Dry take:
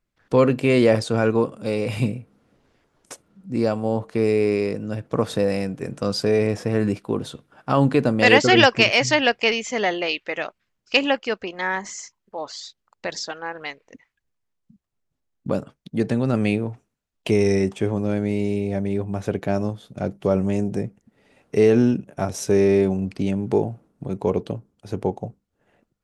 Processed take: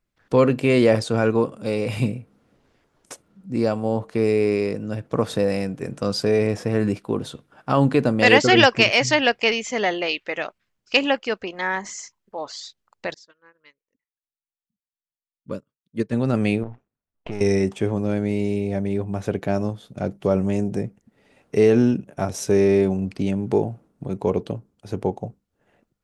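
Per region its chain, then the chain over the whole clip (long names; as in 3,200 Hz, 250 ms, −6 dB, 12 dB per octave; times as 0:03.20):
0:13.14–0:16.13: Butterworth band-reject 750 Hz, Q 2.4 + expander for the loud parts 2.5 to 1, over −38 dBFS
0:16.63–0:17.41: gain on one half-wave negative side −12 dB + low-pass that shuts in the quiet parts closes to 1,500 Hz, open at −16.5 dBFS + downward compressor 3 to 1, threshold −27 dBFS
whole clip: no processing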